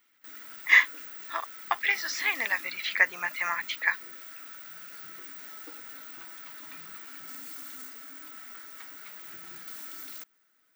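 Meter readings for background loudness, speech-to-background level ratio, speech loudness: −41.0 LKFS, 15.5 dB, −25.5 LKFS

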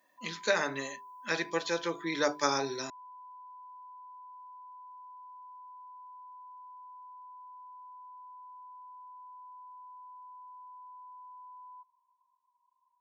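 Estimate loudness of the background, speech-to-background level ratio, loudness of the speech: −50.0 LKFS, 18.0 dB, −32.0 LKFS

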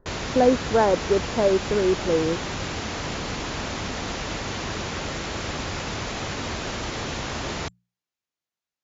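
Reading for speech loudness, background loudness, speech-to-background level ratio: −22.5 LKFS, −30.0 LKFS, 7.5 dB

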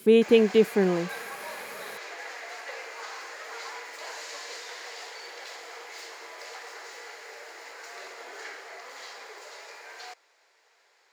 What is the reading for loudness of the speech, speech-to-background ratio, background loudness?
−22.0 LKFS, 18.0 dB, −40.0 LKFS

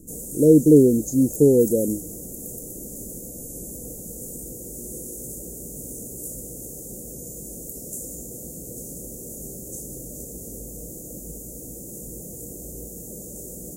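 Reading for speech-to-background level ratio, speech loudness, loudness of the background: 17.5 dB, −17.0 LKFS, −34.5 LKFS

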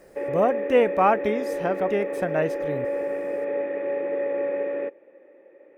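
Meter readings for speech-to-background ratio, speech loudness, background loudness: 4.0 dB, −24.5 LKFS, −28.5 LKFS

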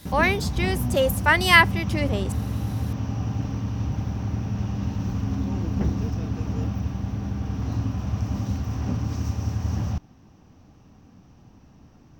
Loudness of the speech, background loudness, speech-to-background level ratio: −21.0 LKFS, −28.0 LKFS, 7.0 dB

